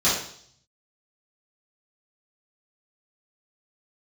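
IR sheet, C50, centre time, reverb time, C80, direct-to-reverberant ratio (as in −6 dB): 2.5 dB, 47 ms, 0.60 s, 7.0 dB, −11.0 dB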